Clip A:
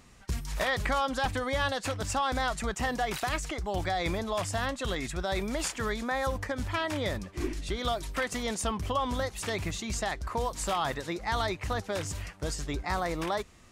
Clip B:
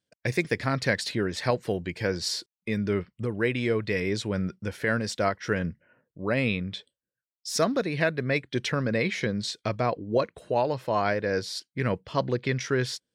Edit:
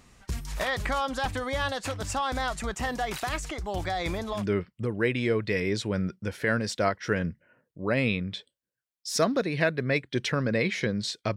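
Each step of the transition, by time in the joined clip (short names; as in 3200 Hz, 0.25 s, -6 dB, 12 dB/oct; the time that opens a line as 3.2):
clip A
4.39 switch to clip B from 2.79 s, crossfade 0.14 s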